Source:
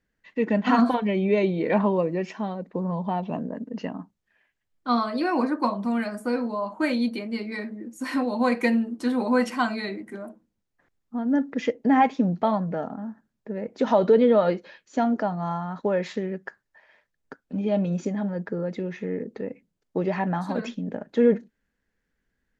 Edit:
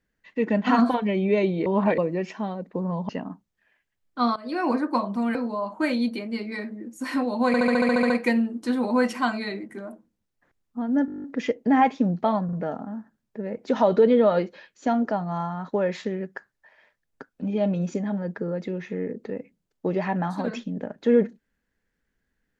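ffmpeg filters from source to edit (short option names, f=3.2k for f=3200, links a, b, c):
-filter_complex "[0:a]asplit=26[a][b][c][d][e][f][g][h][i][j][k][l][m][n][o][p][q][r][s][t][u][v][w][x][y][z];[a]atrim=end=1.662[aa];[b]atrim=start=1.658:end=1.982,asetpts=PTS-STARTPTS,areverse[ab];[c]atrim=start=1.978:end=3.092[ac];[d]atrim=start=3.778:end=5.05,asetpts=PTS-STARTPTS,afade=t=out:st=1.268:d=0.004:c=hsin:silence=0.125893[ad];[e]atrim=start=5.05:end=6.042,asetpts=PTS-STARTPTS,afade=t=in:d=0.29:silence=0.125893[ae];[f]atrim=start=6.348:end=8.542[af];[g]atrim=start=8.468:end=8.542[ag];[h]atrim=start=8.468:end=8.542[ah];[i]atrim=start=8.468:end=8.542[ai];[j]atrim=start=8.468:end=8.542[aj];[k]atrim=start=8.468:end=8.542[ak];[l]atrim=start=8.468:end=8.542[al];[m]atrim=start=8.468:end=8.542[am];[n]atrim=start=8.468:end=8.542[an];[o]atrim=start=8.468:end=11.452[ao];[p]atrim=start=11.428:end=11.452[ap];[q]atrim=start=11.428:end=11.452[aq];[r]atrim=start=11.428:end=11.452[ar];[s]atrim=start=11.428:end=11.452[as];[t]atrim=start=11.428:end=11.452[at];[u]atrim=start=11.428:end=11.452[au];[v]atrim=start=11.428:end=11.452[av];[w]atrim=start=11.428:end=11.452[aw];[x]atrim=start=11.428:end=12.682[ax];[y]atrim=start=12.638:end=12.682[ay];[z]atrim=start=12.638[az];[aa][ab]acrossfade=d=0.004:c1=hsin:c2=hsin[ba];[ba][ac]acrossfade=d=0.004:c1=hsin:c2=hsin[bb];[ad][ae]concat=n=2:v=0:a=1[bc];[bb][bc]acrossfade=d=0.004:c1=hsin:c2=hsin[bd];[bd][af]acrossfade=d=0.004:c1=hsin:c2=hsin[be];[be][ag]acrossfade=d=0.004:c1=hsin:c2=hsin[bf];[bf][ah]acrossfade=d=0.004:c1=hsin:c2=hsin[bg];[bg][ai]acrossfade=d=0.004:c1=hsin:c2=hsin[bh];[bh][aj]acrossfade=d=0.004:c1=hsin:c2=hsin[bi];[bi][ak]acrossfade=d=0.004:c1=hsin:c2=hsin[bj];[bj][al]acrossfade=d=0.004:c1=hsin:c2=hsin[bk];[bk][am]acrossfade=d=0.004:c1=hsin:c2=hsin[bl];[bl][an]acrossfade=d=0.004:c1=hsin:c2=hsin[bm];[bm][ao]acrossfade=d=0.004:c1=hsin:c2=hsin[bn];[bn][ap]acrossfade=d=0.004:c1=hsin:c2=hsin[bo];[bo][aq]acrossfade=d=0.004:c1=hsin:c2=hsin[bp];[bp][ar]acrossfade=d=0.004:c1=hsin:c2=hsin[bq];[bq][as]acrossfade=d=0.004:c1=hsin:c2=hsin[br];[br][at]acrossfade=d=0.004:c1=hsin:c2=hsin[bs];[bs][au]acrossfade=d=0.004:c1=hsin:c2=hsin[bt];[bt][av]acrossfade=d=0.004:c1=hsin:c2=hsin[bu];[bu][aw]acrossfade=d=0.004:c1=hsin:c2=hsin[bv];[bv][ax]acrossfade=d=0.004:c1=hsin:c2=hsin[bw];[bw][ay]acrossfade=d=0.004:c1=hsin:c2=hsin[bx];[bx][az]acrossfade=d=0.004:c1=hsin:c2=hsin"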